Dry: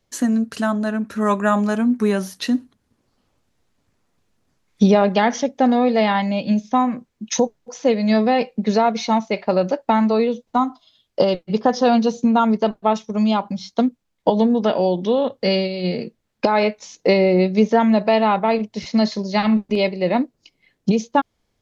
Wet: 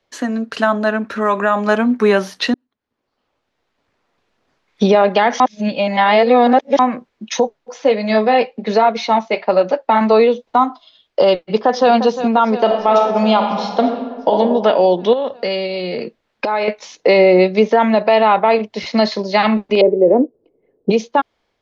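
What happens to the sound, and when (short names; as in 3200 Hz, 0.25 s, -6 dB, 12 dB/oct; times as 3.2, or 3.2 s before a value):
1.13–1.67 compressor, threshold -19 dBFS
2.54–4.85 fade in
5.4–6.79 reverse
7.32–10.01 flange 1.3 Hz, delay 2.9 ms, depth 6.8 ms, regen -51%
11.38–11.92 echo throw 0.35 s, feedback 75%, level -14 dB
12.61–14.37 reverb throw, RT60 1.5 s, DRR 4 dB
15.13–16.68 compressor 4:1, threshold -25 dBFS
19.81–20.9 synth low-pass 440 Hz, resonance Q 3.9
whole clip: three-band isolator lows -13 dB, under 340 Hz, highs -18 dB, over 4700 Hz; AGC gain up to 5 dB; maximiser +7.5 dB; gain -2 dB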